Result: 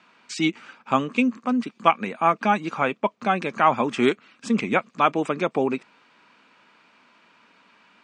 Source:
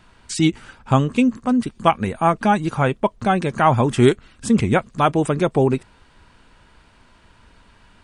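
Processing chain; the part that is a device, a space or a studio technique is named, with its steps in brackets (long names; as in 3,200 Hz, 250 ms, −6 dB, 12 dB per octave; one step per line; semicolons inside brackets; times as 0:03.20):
television speaker (loudspeaker in its box 200–6,800 Hz, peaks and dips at 370 Hz −3 dB, 1,200 Hz +5 dB, 2,400 Hz +8 dB)
level −4 dB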